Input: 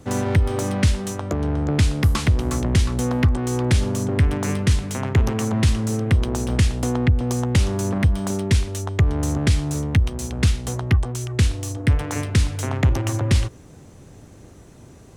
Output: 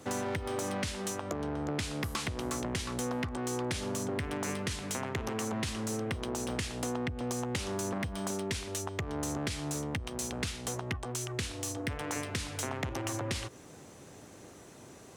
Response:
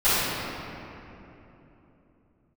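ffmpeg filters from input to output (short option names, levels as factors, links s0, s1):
-af "highpass=f=430:p=1,acompressor=threshold=0.0251:ratio=3,asoftclip=type=tanh:threshold=0.075"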